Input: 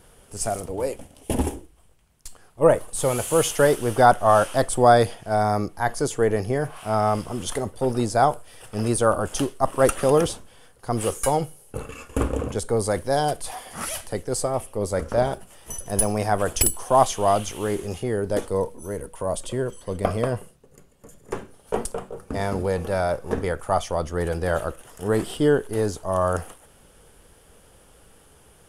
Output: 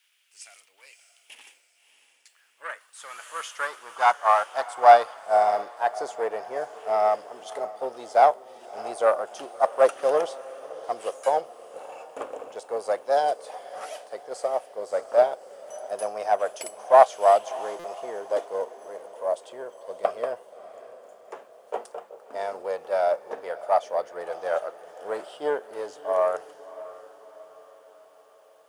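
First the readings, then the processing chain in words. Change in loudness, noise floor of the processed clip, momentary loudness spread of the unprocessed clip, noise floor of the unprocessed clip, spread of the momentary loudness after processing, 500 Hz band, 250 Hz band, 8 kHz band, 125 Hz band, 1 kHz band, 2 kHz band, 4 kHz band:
−1.5 dB, −61 dBFS, 14 LU, −54 dBFS, 20 LU, −2.0 dB, −20.5 dB, −16.0 dB, below −30 dB, +0.5 dB, −3.0 dB, −8.0 dB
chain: one-sided soft clipper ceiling −13 dBFS
low-pass filter 6,600 Hz 12 dB per octave
bit-depth reduction 10 bits, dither none
high-pass filter sweep 2,400 Hz → 610 Hz, 0:01.58–0:05.54
on a send: feedback delay with all-pass diffusion 618 ms, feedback 52%, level −11.5 dB
on the sum: buffer that repeats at 0:17.79, samples 256, times 8
expander for the loud parts 1.5 to 1, over −29 dBFS

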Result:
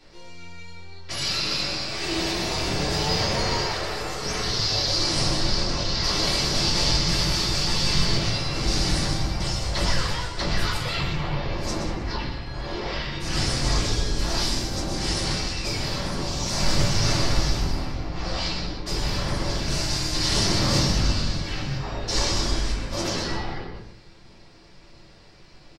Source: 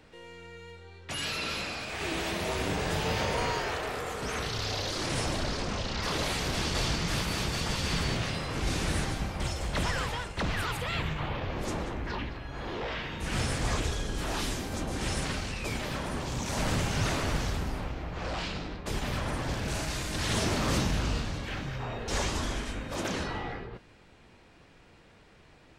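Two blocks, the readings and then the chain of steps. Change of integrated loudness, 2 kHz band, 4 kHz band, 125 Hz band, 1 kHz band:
+7.0 dB, +3.5 dB, +10.5 dB, +6.0 dB, +3.5 dB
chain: parametric band 5,000 Hz +14 dB 0.7 octaves
single-tap delay 125 ms −9 dB
rectangular room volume 130 cubic metres, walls furnished, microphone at 3 metres
level −4.5 dB

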